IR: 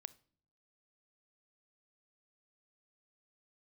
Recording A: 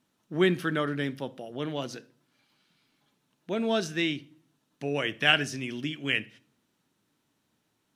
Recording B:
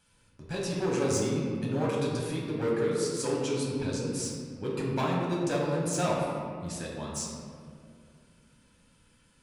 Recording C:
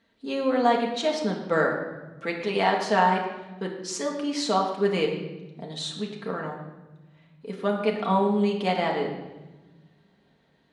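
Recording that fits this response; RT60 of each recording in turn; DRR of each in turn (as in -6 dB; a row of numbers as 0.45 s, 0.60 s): A; no single decay rate, 2.4 s, 1.1 s; 18.0 dB, -4.0 dB, -1.0 dB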